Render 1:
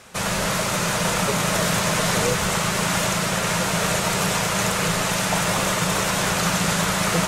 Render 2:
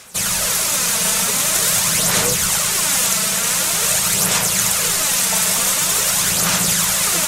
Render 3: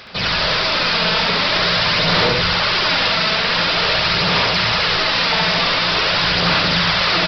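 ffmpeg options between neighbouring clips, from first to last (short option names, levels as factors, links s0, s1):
-af "crystalizer=i=5.5:c=0,aphaser=in_gain=1:out_gain=1:delay=4.6:decay=0.43:speed=0.46:type=sinusoidal,volume=0.501"
-af "aresample=11025,asoftclip=type=tanh:threshold=0.133,aresample=44100,aecho=1:1:69.97|227.4:0.891|0.251,volume=1.88"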